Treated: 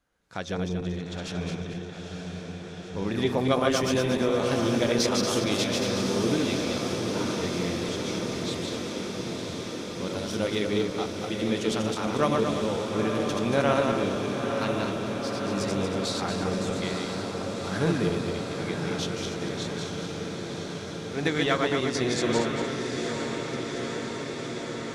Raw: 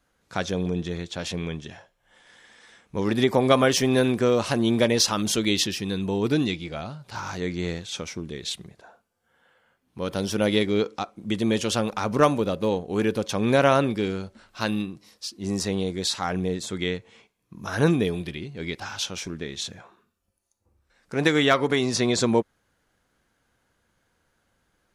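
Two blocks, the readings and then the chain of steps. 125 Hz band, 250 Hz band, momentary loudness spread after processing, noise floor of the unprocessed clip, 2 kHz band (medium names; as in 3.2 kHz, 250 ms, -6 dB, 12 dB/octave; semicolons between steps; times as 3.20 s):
-2.0 dB, -2.0 dB, 10 LU, -72 dBFS, -2.0 dB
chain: backward echo that repeats 116 ms, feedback 61%, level -3 dB; treble shelf 8.6 kHz -4 dB; on a send: echo that smears into a reverb 912 ms, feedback 79%, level -6 dB; on the sum: trim -6.5 dB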